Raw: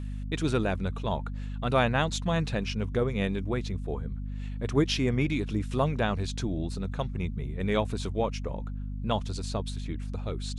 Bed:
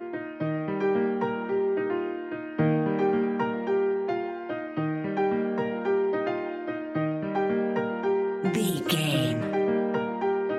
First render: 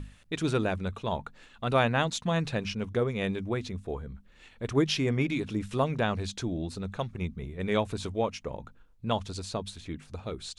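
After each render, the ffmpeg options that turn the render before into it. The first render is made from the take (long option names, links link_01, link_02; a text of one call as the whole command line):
ffmpeg -i in.wav -af "bandreject=frequency=50:width_type=h:width=6,bandreject=frequency=100:width_type=h:width=6,bandreject=frequency=150:width_type=h:width=6,bandreject=frequency=200:width_type=h:width=6,bandreject=frequency=250:width_type=h:width=6" out.wav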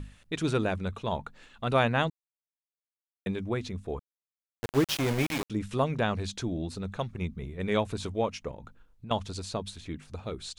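ffmpeg -i in.wav -filter_complex "[0:a]asettb=1/sr,asplit=3[link_01][link_02][link_03];[link_01]atrim=end=3.994[link_04];[link_02]atrim=start=3.99:end=5.5,asetpts=PTS-STARTPTS,afade=type=in:duration=0.004:curve=qsin,afade=type=out:start_time=1.506:duration=0.004:curve=qsin,aeval=exprs='val(0)*gte(abs(val(0)),0.0398)':channel_layout=same[link_05];[link_03]atrim=start=5.496[link_06];[link_04][link_05]acrossfade=duration=0.004:curve1=hsin:curve2=qsin[link_07];[link_07][link_06]acrossfade=duration=0.004:curve1=qsin:curve2=hsin,asettb=1/sr,asplit=3[link_08][link_09][link_10];[link_08]atrim=end=8.514[link_11];[link_09]atrim=start=8.51:end=9.11,asetpts=PTS-STARTPTS,afade=type=in:duration=0.004:curve=qsin,afade=type=out:start_time=0.596:duration=0.004:curve=qsin,acompressor=threshold=-39dB:ratio=6:attack=3.2:release=140:knee=1:detection=peak[link_12];[link_10]atrim=start=9.106[link_13];[link_11][link_12]acrossfade=duration=0.004:curve1=hsin:curve2=qsin[link_14];[link_14][link_13]acrossfade=duration=0.004:curve1=qsin:curve2=hsin,asplit=3[link_15][link_16][link_17];[link_15]atrim=end=2.1,asetpts=PTS-STARTPTS,afade=type=out:start_time=2.096:duration=0.004:curve=hsin[link_18];[link_16]atrim=start=2.1:end=3.26,asetpts=PTS-STARTPTS,volume=0[link_19];[link_17]atrim=start=3.26,asetpts=PTS-STARTPTS,afade=type=in:duration=0.004:curve=hsin[link_20];[link_18][link_19][link_20]concat=n=3:v=0:a=1" out.wav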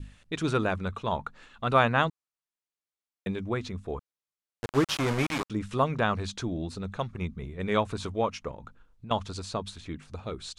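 ffmpeg -i in.wav -af "lowpass=9800,adynamicequalizer=threshold=0.00501:dfrequency=1200:dqfactor=1.8:tfrequency=1200:tqfactor=1.8:attack=5:release=100:ratio=0.375:range=3.5:mode=boostabove:tftype=bell" out.wav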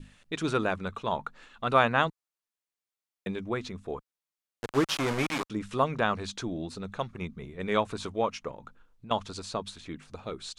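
ffmpeg -i in.wav -af "equalizer=frequency=61:width_type=o:width=1.9:gain=-11" out.wav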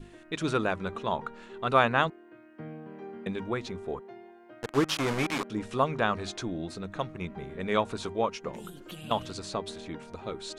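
ffmpeg -i in.wav -i bed.wav -filter_complex "[1:a]volume=-18.5dB[link_01];[0:a][link_01]amix=inputs=2:normalize=0" out.wav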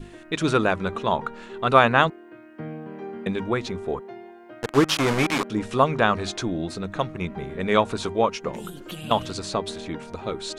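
ffmpeg -i in.wav -af "volume=7dB,alimiter=limit=-2dB:level=0:latency=1" out.wav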